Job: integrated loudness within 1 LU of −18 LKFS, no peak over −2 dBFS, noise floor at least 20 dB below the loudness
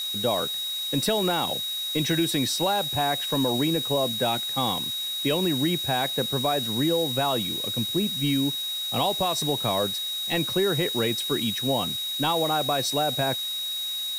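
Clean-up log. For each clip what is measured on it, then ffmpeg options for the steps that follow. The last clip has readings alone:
interfering tone 3,800 Hz; level of the tone −28 dBFS; background noise floor −31 dBFS; target noise floor −45 dBFS; integrated loudness −24.5 LKFS; sample peak −11.5 dBFS; target loudness −18.0 LKFS
→ -af "bandreject=frequency=3800:width=30"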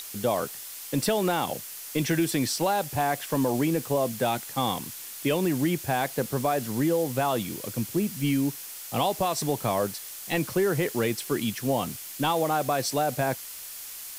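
interfering tone none found; background noise floor −40 dBFS; target noise floor −48 dBFS
→ -af "afftdn=noise_reduction=8:noise_floor=-40"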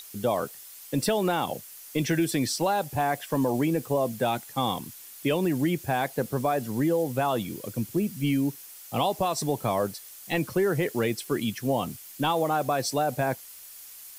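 background noise floor −46 dBFS; target noise floor −48 dBFS
→ -af "afftdn=noise_reduction=6:noise_floor=-46"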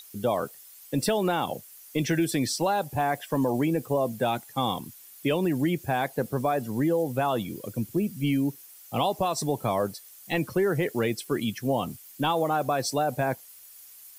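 background noise floor −50 dBFS; integrated loudness −27.5 LKFS; sample peak −13.5 dBFS; target loudness −18.0 LKFS
→ -af "volume=9.5dB"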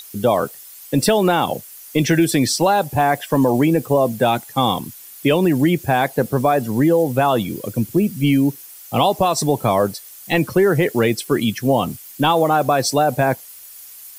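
integrated loudness −18.0 LKFS; sample peak −4.0 dBFS; background noise floor −40 dBFS

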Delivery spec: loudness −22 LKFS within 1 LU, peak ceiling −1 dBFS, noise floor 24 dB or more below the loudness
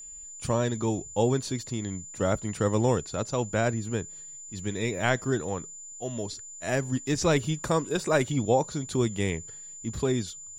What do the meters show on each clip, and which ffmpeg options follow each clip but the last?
interfering tone 7,100 Hz; level of the tone −41 dBFS; integrated loudness −28.5 LKFS; sample peak −10.5 dBFS; target loudness −22.0 LKFS
→ -af "bandreject=frequency=7100:width=30"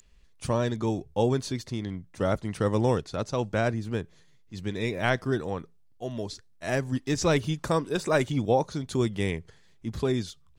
interfering tone none found; integrated loudness −28.5 LKFS; sample peak −11.0 dBFS; target loudness −22.0 LKFS
→ -af "volume=6.5dB"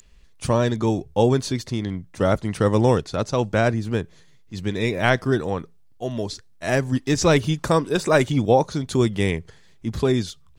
integrated loudness −22.0 LKFS; sample peak −4.5 dBFS; background noise floor −51 dBFS

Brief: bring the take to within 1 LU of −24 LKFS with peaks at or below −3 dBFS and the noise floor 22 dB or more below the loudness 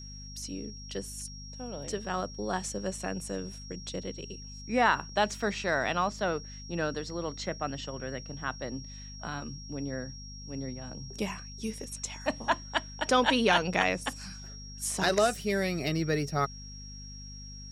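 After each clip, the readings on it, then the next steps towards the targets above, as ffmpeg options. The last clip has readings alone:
mains hum 50 Hz; hum harmonics up to 250 Hz; level of the hum −43 dBFS; interfering tone 5,600 Hz; level of the tone −46 dBFS; integrated loudness −32.0 LKFS; sample peak −8.0 dBFS; target loudness −24.0 LKFS
→ -af "bandreject=frequency=50:width_type=h:width=6,bandreject=frequency=100:width_type=h:width=6,bandreject=frequency=150:width_type=h:width=6,bandreject=frequency=200:width_type=h:width=6,bandreject=frequency=250:width_type=h:width=6"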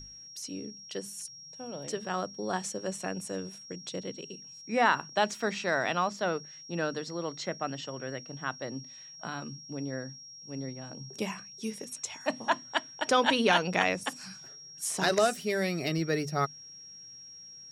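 mains hum none found; interfering tone 5,600 Hz; level of the tone −46 dBFS
→ -af "bandreject=frequency=5600:width=30"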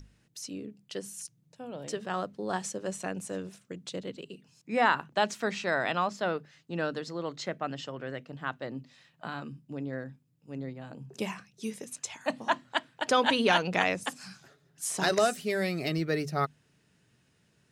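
interfering tone none found; integrated loudness −31.5 LKFS; sample peak −8.0 dBFS; target loudness −24.0 LKFS
→ -af "volume=7.5dB,alimiter=limit=-3dB:level=0:latency=1"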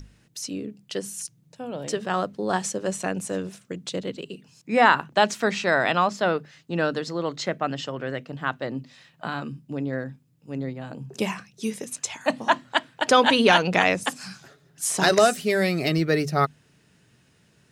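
integrated loudness −24.5 LKFS; sample peak −3.0 dBFS; background noise floor −61 dBFS

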